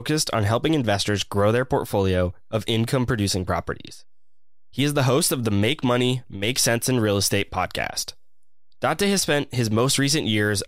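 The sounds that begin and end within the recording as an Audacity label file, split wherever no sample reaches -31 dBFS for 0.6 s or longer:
4.780000	8.100000	sound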